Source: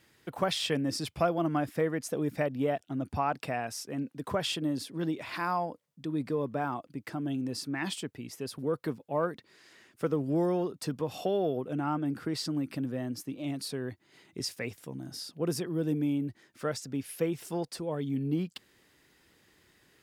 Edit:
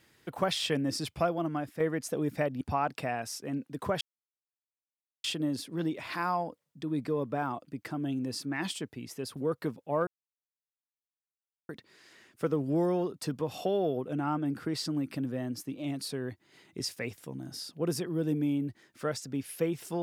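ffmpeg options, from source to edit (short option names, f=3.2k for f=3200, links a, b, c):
-filter_complex "[0:a]asplit=5[a][b][c][d][e];[a]atrim=end=1.8,asetpts=PTS-STARTPTS,afade=t=out:st=1.07:d=0.73:silence=0.446684[f];[b]atrim=start=1.8:end=2.612,asetpts=PTS-STARTPTS,afade=t=in:d=0.004:c=hsin:silence=0.446684[g];[c]atrim=start=3.058:end=4.46,asetpts=PTS-STARTPTS,afade=t=out:st=1.398:d=0.004:c=hsin,apad=pad_dur=1.23[h];[d]atrim=start=4.46:end=9.29,asetpts=PTS-STARTPTS,afade=t=in:d=0.004:c=hsin,afade=t=out:st=4.826:d=0.004:c=hsin,apad=pad_dur=1.62[i];[e]atrim=start=9.29,asetpts=PTS-STARTPTS,afade=t=in:d=0.004:c=hsin[j];[f][g]concat=n=2:v=0:a=1[k];[h][i][j]concat=n=3:v=0:a=1[l];[k][l]acrossfade=d=0.004:c1=hsin:c2=hsin"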